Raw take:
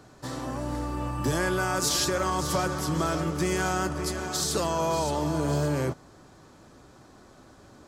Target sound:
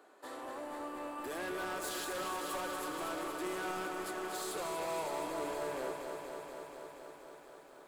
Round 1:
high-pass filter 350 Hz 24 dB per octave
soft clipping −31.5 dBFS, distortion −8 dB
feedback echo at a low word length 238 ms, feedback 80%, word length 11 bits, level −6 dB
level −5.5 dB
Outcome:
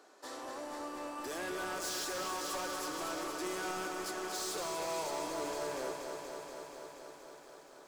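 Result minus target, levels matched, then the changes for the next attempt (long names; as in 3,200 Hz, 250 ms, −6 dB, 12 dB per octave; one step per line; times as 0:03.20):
4,000 Hz band +3.0 dB
add after high-pass filter: parametric band 5,600 Hz −14 dB 0.75 octaves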